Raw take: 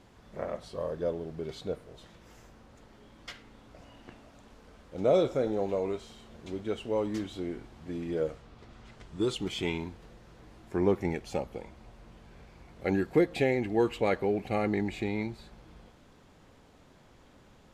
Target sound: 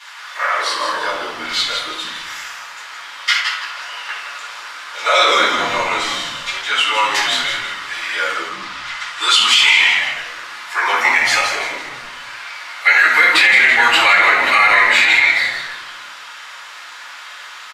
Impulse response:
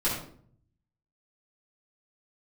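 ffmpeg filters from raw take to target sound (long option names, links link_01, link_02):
-filter_complex "[0:a]highpass=frequency=1300:width=0.5412,highpass=frequency=1300:width=1.3066,highshelf=frequency=8200:gain=-7,asplit=6[link_01][link_02][link_03][link_04][link_05][link_06];[link_02]adelay=166,afreqshift=-140,volume=-6dB[link_07];[link_03]adelay=332,afreqshift=-280,volume=-14.4dB[link_08];[link_04]adelay=498,afreqshift=-420,volume=-22.8dB[link_09];[link_05]adelay=664,afreqshift=-560,volume=-31.2dB[link_10];[link_06]adelay=830,afreqshift=-700,volume=-39.6dB[link_11];[link_01][link_07][link_08][link_09][link_10][link_11]amix=inputs=6:normalize=0[link_12];[1:a]atrim=start_sample=2205[link_13];[link_12][link_13]afir=irnorm=-1:irlink=0,alimiter=level_in=24dB:limit=-1dB:release=50:level=0:latency=1,volume=-1dB"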